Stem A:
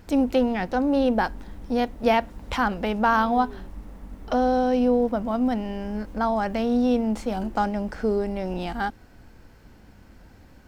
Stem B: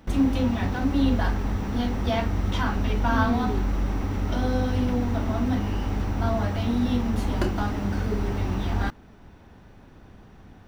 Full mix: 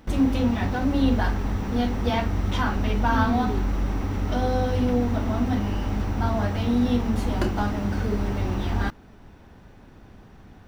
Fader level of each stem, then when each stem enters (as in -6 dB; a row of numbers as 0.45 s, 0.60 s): -10.5 dB, +0.5 dB; 0.00 s, 0.00 s